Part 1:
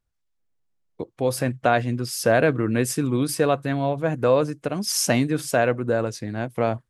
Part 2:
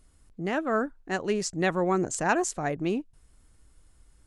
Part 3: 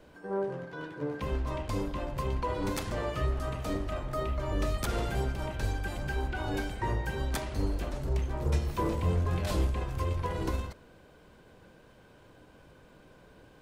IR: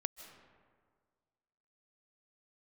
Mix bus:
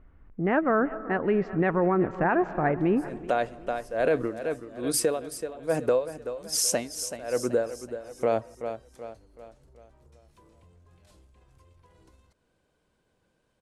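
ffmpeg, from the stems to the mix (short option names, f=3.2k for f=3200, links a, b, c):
-filter_complex "[0:a]equalizer=f=125:t=o:w=1:g=-8,equalizer=f=500:t=o:w=1:g=7,equalizer=f=8k:t=o:w=1:g=7,aeval=exprs='val(0)*pow(10,-36*(0.5-0.5*cos(2*PI*1.2*n/s))/20)':c=same,adelay=1650,volume=-2dB,asplit=3[a][b][c];[b]volume=-21dB[d];[c]volume=-12dB[e];[1:a]lowpass=f=2.1k:w=0.5412,lowpass=f=2.1k:w=1.3066,volume=2dB,asplit=3[f][g][h];[g]volume=-5.5dB[i];[h]volume=-16dB[j];[2:a]lowpass=f=11k:w=0.5412,lowpass=f=11k:w=1.3066,highshelf=f=5.6k:g=11,acompressor=threshold=-40dB:ratio=5,adelay=1600,volume=-16.5dB[k];[3:a]atrim=start_sample=2205[l];[d][i]amix=inputs=2:normalize=0[m];[m][l]afir=irnorm=-1:irlink=0[n];[e][j]amix=inputs=2:normalize=0,aecho=0:1:379|758|1137|1516|1895|2274:1|0.44|0.194|0.0852|0.0375|0.0165[o];[a][f][k][n][o]amix=inputs=5:normalize=0,alimiter=limit=-14.5dB:level=0:latency=1:release=65"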